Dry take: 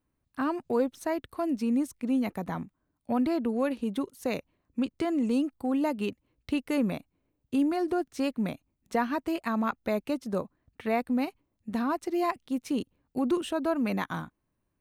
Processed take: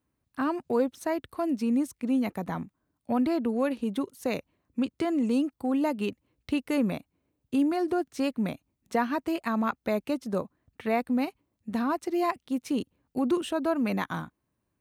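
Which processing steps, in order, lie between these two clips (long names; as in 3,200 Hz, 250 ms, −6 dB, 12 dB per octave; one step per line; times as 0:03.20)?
high-pass filter 55 Hz
level +1 dB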